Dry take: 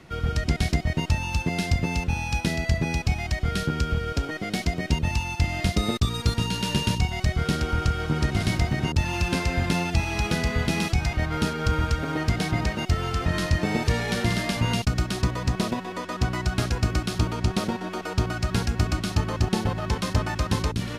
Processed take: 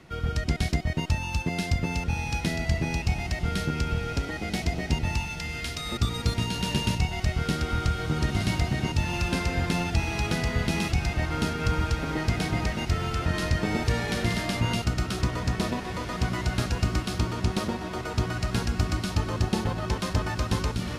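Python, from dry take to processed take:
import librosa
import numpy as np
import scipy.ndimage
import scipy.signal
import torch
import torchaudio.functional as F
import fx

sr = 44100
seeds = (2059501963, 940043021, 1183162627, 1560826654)

y = fx.highpass(x, sr, hz=1300.0, slope=12, at=(5.25, 5.92))
y = fx.echo_diffused(y, sr, ms=1969, feedback_pct=41, wet_db=-9.5)
y = F.gain(torch.from_numpy(y), -2.5).numpy()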